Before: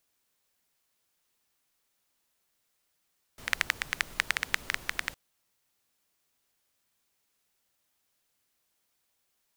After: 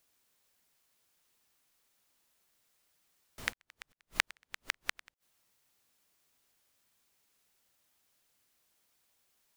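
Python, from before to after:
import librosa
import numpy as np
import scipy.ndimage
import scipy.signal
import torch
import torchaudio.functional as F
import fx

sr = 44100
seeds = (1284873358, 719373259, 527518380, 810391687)

y = fx.gate_flip(x, sr, shuts_db=-10.0, range_db=-39)
y = fx.auto_swell(y, sr, attack_ms=259.0, at=(3.49, 4.11), fade=0.02)
y = y * 10.0 ** (2.0 / 20.0)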